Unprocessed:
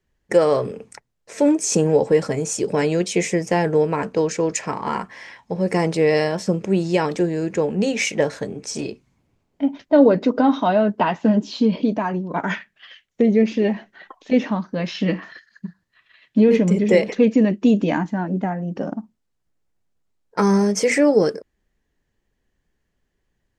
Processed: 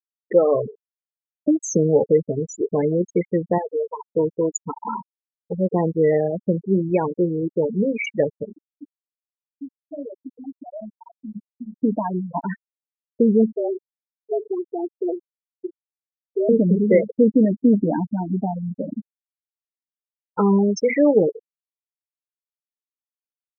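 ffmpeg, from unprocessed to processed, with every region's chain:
-filter_complex "[0:a]asettb=1/sr,asplit=3[a][b][c];[a]atrim=end=0.734[d];[b]atrim=start=0.73:end=1.48,asetpts=PTS-STARTPTS,afade=t=in:d=0.004:c=qsin,afade=t=out:st=0.746:d=0.004:c=qsin,aeval=exprs='(mod(11.2*val(0)+1,2)-1)/11.2':c=same,acrusher=bits=5:mix=0:aa=0.5[e];[c]atrim=start=1.476[f];[d][e]acrossfade=d=0.004:c1=hsin:c2=qsin[g];[g][f]acrossfade=d=0.004:c1=qsin:c2=hsin,asettb=1/sr,asplit=3[h][i][j];[h]atrim=end=3.584[k];[i]atrim=start=3.58:end=4.11,asetpts=PTS-STARTPTS,afade=t=in:d=0.004:c=qsin,afade=t=out:st=0.526:d=0.004:c=qsin,highpass=f=770:p=1,equalizer=f=3.8k:w=2.2:g=-8[l];[j]atrim=start=4.106[m];[k][l]acrossfade=d=0.004:c1=hsin:c2=qsin[n];[n][m]acrossfade=d=0.004:c1=qsin:c2=hsin,asettb=1/sr,asplit=3[o][p][q];[o]atrim=end=8.574[r];[p]atrim=start=8.57:end=11.82,asetpts=PTS-STARTPTS,afade=t=in:d=0.004:c=qsin,afade=t=out:st=3.246:d=0.004:c=qsin,equalizer=f=150:t=o:w=0.4:g=-11.5,acompressor=threshold=-30dB:ratio=5:attack=3.2:release=140:knee=1:detection=peak,asplit=2[s][t];[t]adelay=41,volume=-8.5dB[u];[s][u]amix=inputs=2:normalize=0,atrim=end_sample=143325[v];[q]atrim=start=11.816[w];[r][v]acrossfade=d=0.004:c1=hsin:c2=qsin[x];[x][w]acrossfade=d=0.004:c1=qsin:c2=hsin,asettb=1/sr,asplit=3[y][z][aa];[y]atrim=end=13.534[ab];[z]atrim=start=13.53:end=16.49,asetpts=PTS-STARTPTS,afade=t=in:d=0.004:c=qsin,afade=t=out:st=2.956:d=0.004:c=qsin,equalizer=f=130:w=0.53:g=3,acompressor=threshold=-21dB:ratio=3:attack=3.2:release=140:knee=1:detection=peak,afreqshift=170[ac];[aa]atrim=start=16.486[ad];[ab][ac]acrossfade=d=0.004:c1=hsin:c2=qsin[ae];[ae][ad]acrossfade=d=0.004:c1=qsin:c2=hsin,afftfilt=real='re*gte(hypot(re,im),0.251)':imag='im*gte(hypot(re,im),0.251)':win_size=1024:overlap=0.75,equalizer=f=1.7k:w=3.1:g=-7"

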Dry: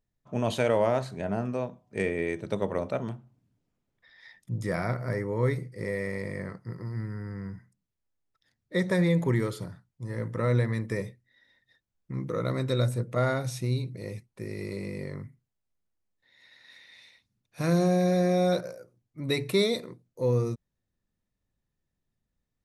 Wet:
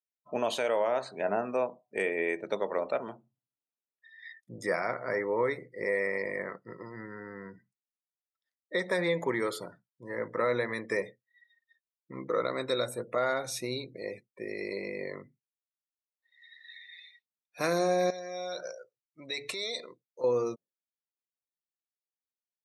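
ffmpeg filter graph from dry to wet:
-filter_complex "[0:a]asettb=1/sr,asplit=3[a][b][c];[a]atrim=end=18.104[d];[b]atrim=start=18.1:end=20.24,asetpts=PTS-STARTPTS,afade=t=in:d=0.004:c=qsin,afade=t=out:st=2.136:d=0.004:c=qsin,acompressor=threshold=-31dB:ratio=16:attack=3.2:release=140:knee=1:detection=peak,lowpass=f=6.9k:t=q:w=1.8,equalizer=f=250:t=o:w=2.8:g=-7.5[e];[c]atrim=start=20.236[f];[d][e]acrossfade=d=0.004:c1=hsin:c2=qsin[g];[g][f]acrossfade=d=0.004:c1=qsin:c2=hsin,afftdn=nr=25:nf=-51,highpass=450,alimiter=limit=-24dB:level=0:latency=1:release=329,volume=5.5dB"

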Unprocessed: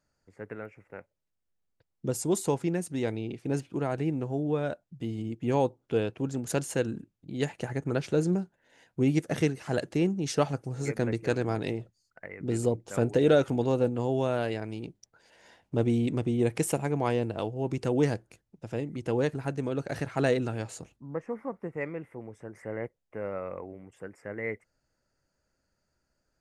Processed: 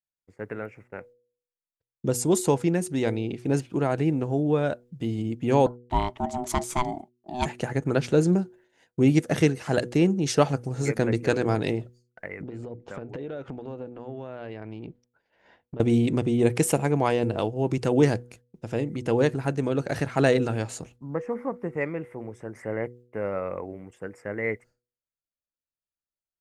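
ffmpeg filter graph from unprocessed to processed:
-filter_complex "[0:a]asettb=1/sr,asplit=3[a][b][c];[a]atrim=end=5.664[d];[b]atrim=start=5.66:end=7.46,asetpts=PTS-STARTPTS,afade=t=in:d=0.004:c=qsin,afade=t=out:st=1.796:d=0.004:c=qsin,agate=range=-33dB:threshold=-55dB:ratio=3:release=100:detection=peak,aeval=exprs='val(0)*sin(2*PI*500*n/s)':c=same[e];[c]atrim=start=7.456[f];[d][e]acrossfade=d=0.004:c1=hsin:c2=qsin[g];[g][f]acrossfade=d=0.004:c1=qsin:c2=hsin,asettb=1/sr,asplit=3[h][i][j];[h]atrim=end=12.424[k];[i]atrim=start=12.42:end=15.8,asetpts=PTS-STARTPTS,afade=t=in:d=0.004:c=qsin,afade=t=out:st=3.376:d=0.004:c=qsin,lowpass=2.7k,acompressor=threshold=-38dB:ratio=8:attack=3.2:release=140:knee=1:detection=peak[l];[j]atrim=start=15.796[m];[k][l]acrossfade=d=0.004:c1=hsin:c2=qsin[n];[n][m]acrossfade=d=0.004:c1=qsin:c2=hsin,agate=range=-33dB:threshold=-52dB:ratio=3:detection=peak,bandreject=f=121.6:t=h:w=4,bandreject=f=243.2:t=h:w=4,bandreject=f=364.8:t=h:w=4,bandreject=f=486.4:t=h:w=4,volume=5.5dB"

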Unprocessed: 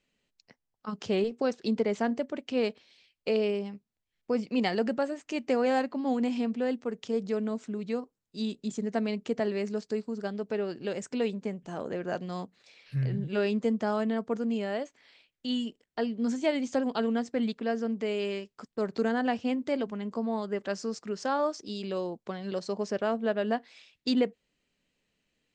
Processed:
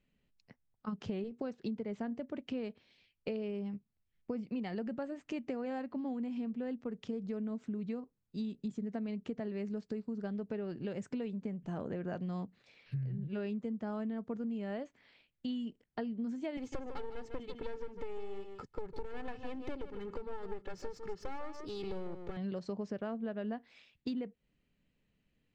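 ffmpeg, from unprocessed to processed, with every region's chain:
-filter_complex "[0:a]asettb=1/sr,asplit=3[a][b][c];[a]atrim=end=16.574[d];[b]atrim=start=16.57:end=22.37,asetpts=PTS-STARTPTS,afade=t=in:d=0.004:c=qsin,afade=t=out:st=5.796:d=0.004:c=qsin,aecho=1:1:2.3:0.92,atrim=end_sample=255780,aeval=exprs='clip(val(0),-1,0.0133)':c=same,aecho=1:1:151:0.282,atrim=end_sample=255780[e];[c]atrim=start=22.366[f];[d][e]acrossfade=d=0.004:c1=hsin:c2=qsin[g];[g][f]acrossfade=d=0.004:c1=qsin:c2=hsin,bass=f=250:g=11,treble=f=4k:g=-10,acompressor=threshold=-31dB:ratio=10,volume=-4dB"

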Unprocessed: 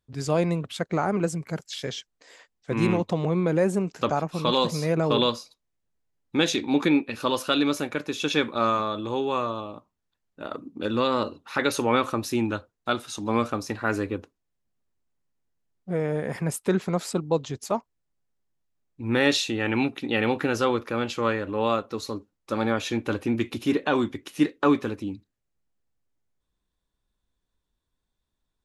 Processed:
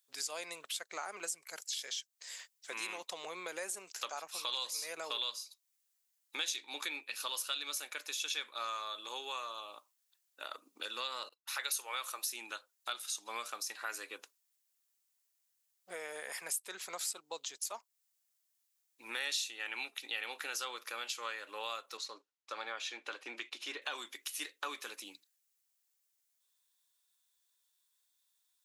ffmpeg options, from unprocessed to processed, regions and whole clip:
-filter_complex "[0:a]asettb=1/sr,asplit=3[a][b][c];[a]atrim=end=11.294[d];[b]atrim=start=11.29:end=12.26,asetpts=PTS-STARTPTS,afade=t=in:d=0.004:c=qsin,afade=t=out:st=0.966:d=0.004:c=qsin,highpass=410,highshelf=f=11k:g=9.5,agate=range=-28dB:threshold=-46dB:ratio=16:release=100:detection=peak[e];[c]atrim=start=12.256[f];[d][e]acrossfade=d=0.004:c1=hsin:c2=qsin[g];[g][f]acrossfade=d=0.004:c1=qsin:c2=hsin,asettb=1/sr,asplit=3[h][i][j];[h]atrim=end=21.974[k];[i]atrim=start=21.97:end=23.82,asetpts=PTS-STARTPTS,afade=t=in:d=0.004:c=qsin,afade=t=out:st=1.846:d=0.004:c=qsin,agate=range=-8dB:threshold=-42dB:ratio=16:release=100:detection=peak,highpass=230,lowpass=6.4k,highshelf=f=4.4k:g=-10[l];[j]atrim=start=23.816[m];[k][l]acrossfade=d=0.004:c1=hsin:c2=qsin[n];[n][m]acrossfade=d=0.004:c1=qsin:c2=hsin,highpass=470,aderivative,acompressor=threshold=-54dB:ratio=2.5,volume=12dB"

